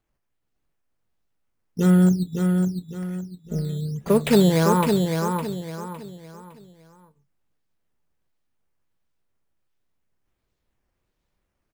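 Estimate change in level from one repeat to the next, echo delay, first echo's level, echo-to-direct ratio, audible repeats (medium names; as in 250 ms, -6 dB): -9.5 dB, 559 ms, -5.0 dB, -4.5 dB, 4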